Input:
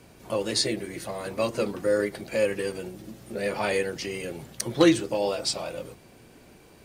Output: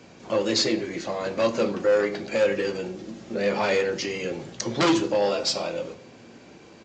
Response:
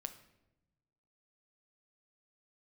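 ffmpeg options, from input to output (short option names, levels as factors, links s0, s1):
-filter_complex "[0:a]aresample=16000,aeval=exprs='0.376*sin(PI/2*2.82*val(0)/0.376)':c=same,aresample=44100,highpass=120[s0];[1:a]atrim=start_sample=2205,asetrate=79380,aresample=44100[s1];[s0][s1]afir=irnorm=-1:irlink=0"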